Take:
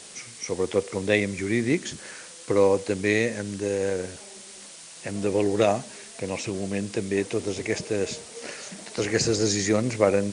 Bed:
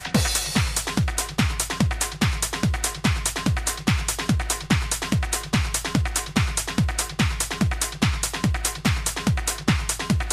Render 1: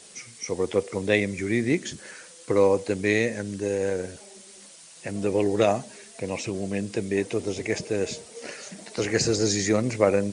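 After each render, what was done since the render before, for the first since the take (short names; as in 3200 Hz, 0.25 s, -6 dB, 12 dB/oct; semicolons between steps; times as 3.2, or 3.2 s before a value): denoiser 6 dB, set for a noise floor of -44 dBFS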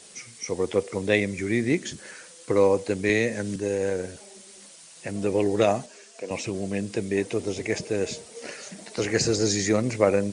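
3.09–3.56 three-band squash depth 40%; 5.86–6.31 speaker cabinet 390–7900 Hz, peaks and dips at 850 Hz -5 dB, 2000 Hz -6 dB, 3800 Hz -5 dB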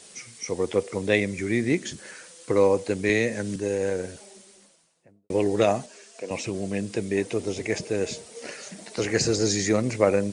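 4.12–5.3 studio fade out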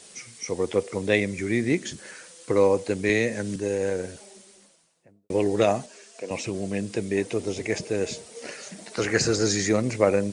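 8.92–9.67 bell 1400 Hz +7.5 dB 0.71 oct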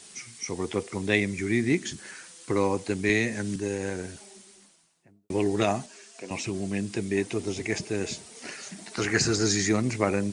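bell 550 Hz -10 dB 0.4 oct; notch 470 Hz, Q 12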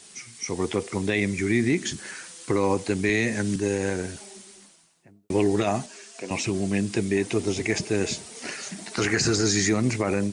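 AGC gain up to 5 dB; limiter -12.5 dBFS, peak gain reduction 8.5 dB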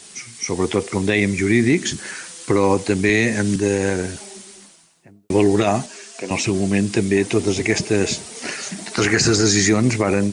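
gain +6.5 dB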